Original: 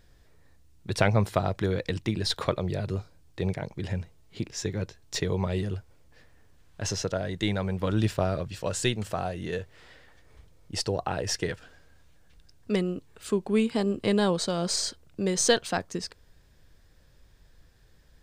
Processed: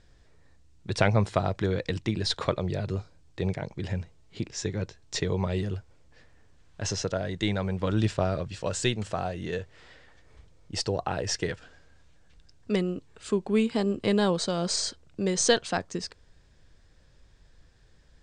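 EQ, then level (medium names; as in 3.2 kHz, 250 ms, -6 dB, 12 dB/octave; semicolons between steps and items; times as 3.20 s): steep low-pass 8.6 kHz 36 dB/octave; 0.0 dB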